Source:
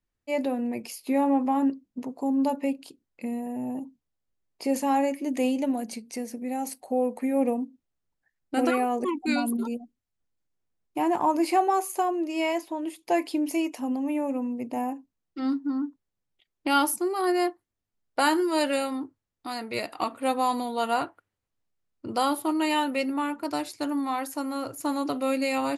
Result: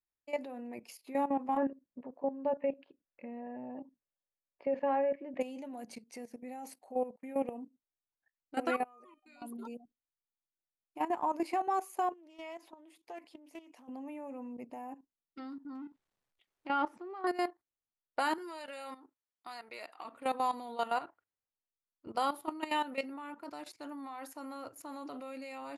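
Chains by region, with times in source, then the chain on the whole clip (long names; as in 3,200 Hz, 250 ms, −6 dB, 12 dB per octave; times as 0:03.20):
0:01.57–0:05.41: low-pass filter 2,700 Hz 24 dB per octave + hollow resonant body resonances 560/1,700 Hz, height 11 dB, ringing for 70 ms
0:07.16–0:07.58: noise gate −32 dBFS, range −32 dB + parametric band 3,000 Hz +9 dB 0.28 octaves
0:08.84–0:09.42: low-shelf EQ 350 Hz −5.5 dB + tuned comb filter 610 Hz, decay 0.56 s, mix 90%
0:12.12–0:13.89: downward compressor 3 to 1, threshold −38 dBFS + notch filter 390 Hz, Q 13 + highs frequency-modulated by the lows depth 0.14 ms
0:15.75–0:17.27: mu-law and A-law mismatch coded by mu + treble cut that deepens with the level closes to 2,100 Hz, closed at −23 dBFS
0:18.38–0:20.05: high-pass filter 630 Hz 6 dB per octave + downward compressor 16 to 1, threshold −29 dBFS
whole clip: low-shelf EQ 370 Hz −12 dB; output level in coarse steps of 14 dB; high-shelf EQ 3,100 Hz −10 dB; level −1 dB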